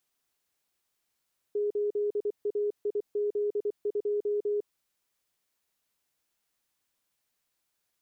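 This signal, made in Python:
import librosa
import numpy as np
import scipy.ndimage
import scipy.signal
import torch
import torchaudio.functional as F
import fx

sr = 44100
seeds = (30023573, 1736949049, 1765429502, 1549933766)

y = fx.morse(sr, text='8AIZ2', wpm=24, hz=414.0, level_db=-25.5)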